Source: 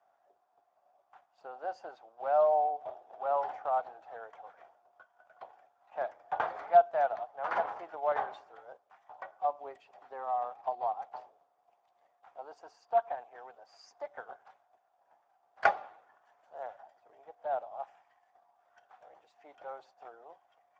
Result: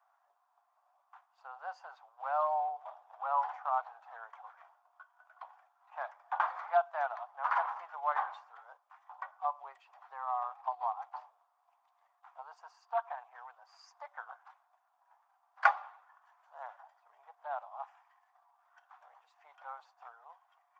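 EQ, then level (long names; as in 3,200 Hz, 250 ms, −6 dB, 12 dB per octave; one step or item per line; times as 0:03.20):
four-pole ladder high-pass 900 Hz, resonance 55%
+7.5 dB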